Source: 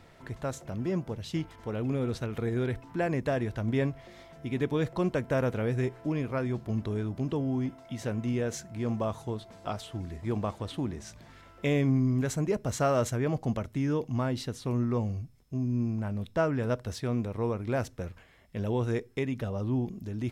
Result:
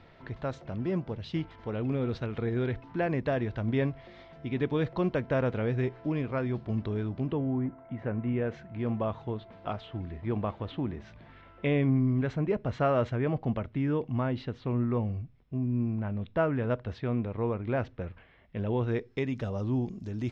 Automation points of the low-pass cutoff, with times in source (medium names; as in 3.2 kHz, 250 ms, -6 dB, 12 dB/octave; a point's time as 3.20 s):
low-pass 24 dB/octave
7.14 s 4.3 kHz
7.69 s 1.7 kHz
8.84 s 3.3 kHz
18.75 s 3.3 kHz
19.40 s 6.8 kHz